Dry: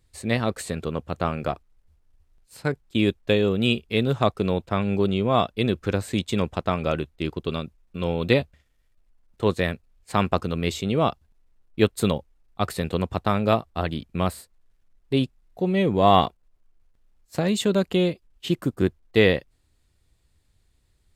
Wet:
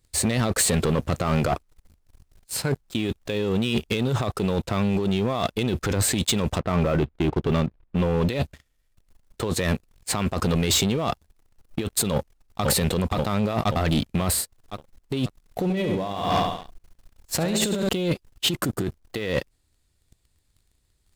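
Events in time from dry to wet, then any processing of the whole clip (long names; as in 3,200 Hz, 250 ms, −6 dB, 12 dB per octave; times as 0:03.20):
0:06.58–0:08.29: high-frequency loss of the air 450 metres
0:12.12–0:12.65: delay throw 530 ms, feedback 40%, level −1 dB
0:15.63–0:17.89: repeating echo 70 ms, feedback 48%, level −5.5 dB
whole clip: bass and treble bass 0 dB, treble +5 dB; compressor whose output falls as the input rises −29 dBFS, ratio −1; leveller curve on the samples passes 3; level −3.5 dB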